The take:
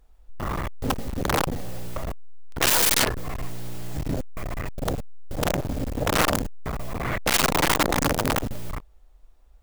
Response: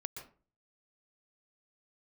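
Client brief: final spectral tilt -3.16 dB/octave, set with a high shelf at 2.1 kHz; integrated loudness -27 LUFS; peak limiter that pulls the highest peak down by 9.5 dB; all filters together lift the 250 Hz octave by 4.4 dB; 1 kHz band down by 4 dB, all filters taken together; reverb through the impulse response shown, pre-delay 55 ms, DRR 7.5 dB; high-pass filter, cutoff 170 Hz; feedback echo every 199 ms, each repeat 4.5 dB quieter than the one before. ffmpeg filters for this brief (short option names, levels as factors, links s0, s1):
-filter_complex "[0:a]highpass=170,equalizer=f=250:t=o:g=7,equalizer=f=1000:t=o:g=-6.5,highshelf=f=2100:g=3.5,alimiter=limit=0.211:level=0:latency=1,aecho=1:1:199|398|597|796|995|1194|1393|1592|1791:0.596|0.357|0.214|0.129|0.0772|0.0463|0.0278|0.0167|0.01,asplit=2[s0][s1];[1:a]atrim=start_sample=2205,adelay=55[s2];[s1][s2]afir=irnorm=-1:irlink=0,volume=0.501[s3];[s0][s3]amix=inputs=2:normalize=0,volume=0.891"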